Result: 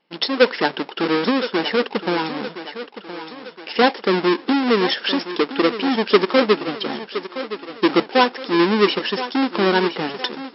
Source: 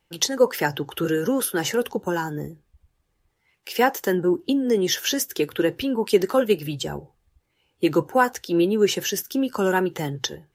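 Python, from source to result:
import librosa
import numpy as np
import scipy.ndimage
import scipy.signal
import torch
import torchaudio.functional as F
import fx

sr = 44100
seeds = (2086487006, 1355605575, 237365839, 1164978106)

p1 = fx.halfwave_hold(x, sr)
p2 = fx.brickwall_bandpass(p1, sr, low_hz=170.0, high_hz=5500.0)
y = p2 + fx.echo_thinned(p2, sr, ms=1017, feedback_pct=55, hz=220.0, wet_db=-11.5, dry=0)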